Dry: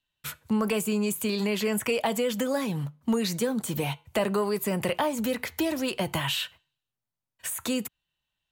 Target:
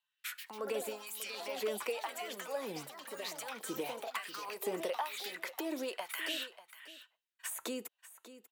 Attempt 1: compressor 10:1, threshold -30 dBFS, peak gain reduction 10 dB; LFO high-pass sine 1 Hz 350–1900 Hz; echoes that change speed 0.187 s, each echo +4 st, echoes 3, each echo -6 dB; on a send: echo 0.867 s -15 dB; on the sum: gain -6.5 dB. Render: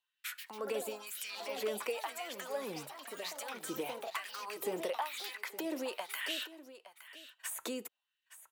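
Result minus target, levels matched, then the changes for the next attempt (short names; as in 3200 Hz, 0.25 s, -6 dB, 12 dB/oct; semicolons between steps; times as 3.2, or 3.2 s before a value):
echo 0.276 s late
change: echo 0.591 s -15 dB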